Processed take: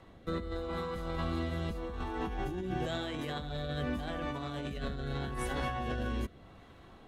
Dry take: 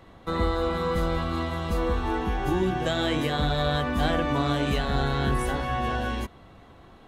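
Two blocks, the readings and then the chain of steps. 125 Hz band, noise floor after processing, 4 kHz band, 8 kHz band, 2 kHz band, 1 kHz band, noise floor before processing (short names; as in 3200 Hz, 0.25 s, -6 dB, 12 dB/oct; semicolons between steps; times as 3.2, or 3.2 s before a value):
-9.5 dB, -56 dBFS, -11.5 dB, -9.0 dB, -10.5 dB, -11.5 dB, -51 dBFS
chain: rotary speaker horn 0.85 Hz; negative-ratio compressor -31 dBFS, ratio -1; gain -5 dB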